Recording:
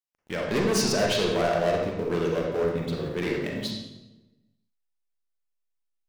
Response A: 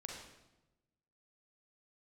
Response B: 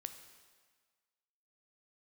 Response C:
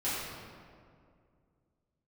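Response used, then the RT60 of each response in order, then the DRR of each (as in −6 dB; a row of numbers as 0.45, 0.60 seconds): A; 1.0, 1.6, 2.2 seconds; −1.0, 7.5, −13.0 decibels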